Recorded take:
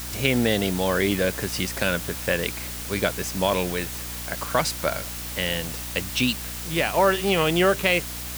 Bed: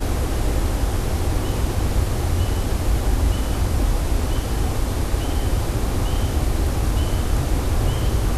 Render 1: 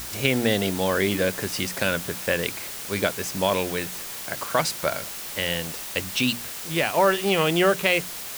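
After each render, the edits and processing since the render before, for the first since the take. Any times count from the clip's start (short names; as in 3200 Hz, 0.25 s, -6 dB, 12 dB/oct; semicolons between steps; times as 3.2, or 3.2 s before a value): notches 60/120/180/240/300 Hz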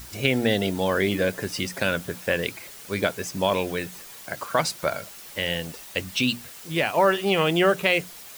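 denoiser 9 dB, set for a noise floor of -35 dBFS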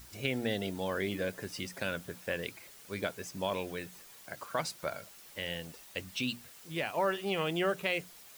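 gain -11 dB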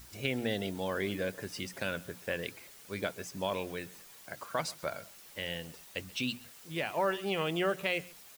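echo 0.133 s -22.5 dB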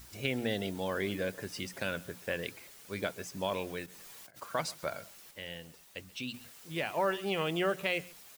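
3.86–4.42 negative-ratio compressor -54 dBFS; 5.31–6.34 gain -5.5 dB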